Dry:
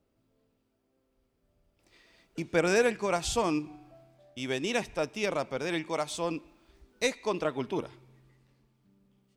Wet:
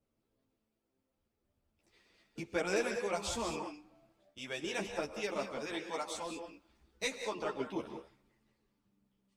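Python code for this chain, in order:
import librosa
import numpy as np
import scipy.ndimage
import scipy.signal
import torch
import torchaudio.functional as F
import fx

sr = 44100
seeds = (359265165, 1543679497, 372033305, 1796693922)

y = fx.rev_gated(x, sr, seeds[0], gate_ms=220, shape='rising', drr_db=5.0)
y = fx.hpss(y, sr, part='harmonic', gain_db=-9)
y = fx.ensemble(y, sr)
y = y * 10.0 ** (-1.5 / 20.0)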